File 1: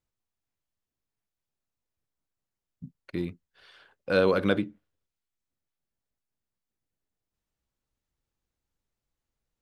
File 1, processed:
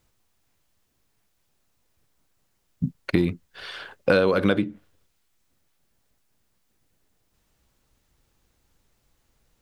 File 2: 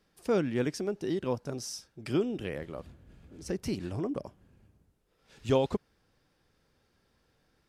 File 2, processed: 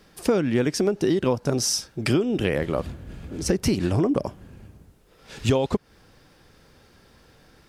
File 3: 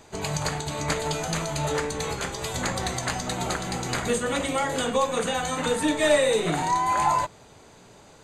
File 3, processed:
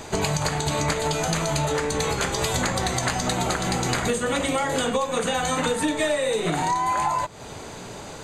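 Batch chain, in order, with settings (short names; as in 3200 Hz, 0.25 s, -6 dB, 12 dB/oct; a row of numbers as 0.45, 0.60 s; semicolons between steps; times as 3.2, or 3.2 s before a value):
compressor 10:1, threshold -34 dBFS; match loudness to -24 LUFS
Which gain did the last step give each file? +17.5, +16.5, +13.0 dB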